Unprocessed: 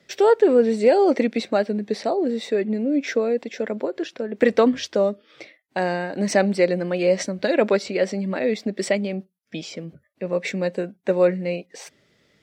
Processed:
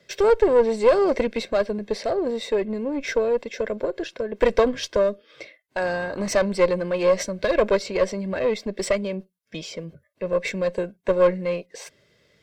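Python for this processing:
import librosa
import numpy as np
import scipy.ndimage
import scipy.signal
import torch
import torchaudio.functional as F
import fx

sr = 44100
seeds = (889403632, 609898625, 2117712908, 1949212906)

y = fx.diode_clip(x, sr, knee_db=-19.5)
y = y + 0.44 * np.pad(y, (int(1.9 * sr / 1000.0), 0))[:len(y)]
y = fx.dmg_buzz(y, sr, base_hz=50.0, harmonics=26, level_db=-43.0, tilt_db=-1, odd_only=False, at=(5.81, 6.28), fade=0.02)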